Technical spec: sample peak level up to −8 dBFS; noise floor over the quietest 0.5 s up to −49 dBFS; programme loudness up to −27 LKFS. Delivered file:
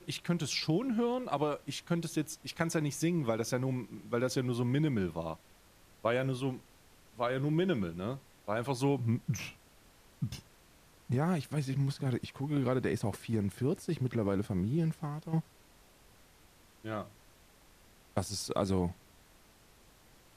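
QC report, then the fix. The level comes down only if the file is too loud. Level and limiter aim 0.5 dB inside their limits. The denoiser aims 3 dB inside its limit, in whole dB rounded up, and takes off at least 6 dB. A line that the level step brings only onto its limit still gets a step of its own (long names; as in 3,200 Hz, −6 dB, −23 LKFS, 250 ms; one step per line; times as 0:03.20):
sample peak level −16.0 dBFS: in spec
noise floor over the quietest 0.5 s −61 dBFS: in spec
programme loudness −34.0 LKFS: in spec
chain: no processing needed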